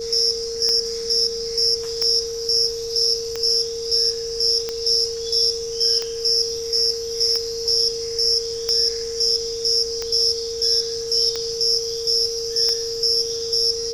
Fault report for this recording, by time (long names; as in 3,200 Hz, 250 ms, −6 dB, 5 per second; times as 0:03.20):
scratch tick 45 rpm −11 dBFS
whistle 460 Hz −26 dBFS